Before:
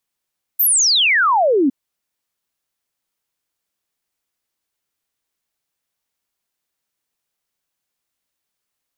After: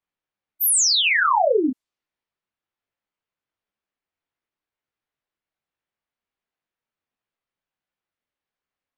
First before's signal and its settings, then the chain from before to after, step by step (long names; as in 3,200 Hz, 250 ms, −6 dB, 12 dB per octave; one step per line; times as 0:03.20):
exponential sine sweep 15,000 Hz → 250 Hz 1.11 s −11.5 dBFS
low-pass that shuts in the quiet parts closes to 2,600 Hz, open at −15.5 dBFS
micro pitch shift up and down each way 48 cents